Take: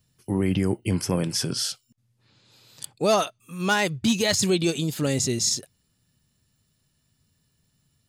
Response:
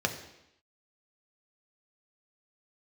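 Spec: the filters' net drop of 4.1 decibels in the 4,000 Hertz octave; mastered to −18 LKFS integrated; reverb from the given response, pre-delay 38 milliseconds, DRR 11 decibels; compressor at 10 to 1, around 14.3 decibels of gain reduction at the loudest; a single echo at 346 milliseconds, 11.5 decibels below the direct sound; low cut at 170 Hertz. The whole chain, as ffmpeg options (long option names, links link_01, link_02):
-filter_complex "[0:a]highpass=170,equalizer=frequency=4000:width_type=o:gain=-5.5,acompressor=threshold=-33dB:ratio=10,aecho=1:1:346:0.266,asplit=2[link_01][link_02];[1:a]atrim=start_sample=2205,adelay=38[link_03];[link_02][link_03]afir=irnorm=-1:irlink=0,volume=-19.5dB[link_04];[link_01][link_04]amix=inputs=2:normalize=0,volume=19dB"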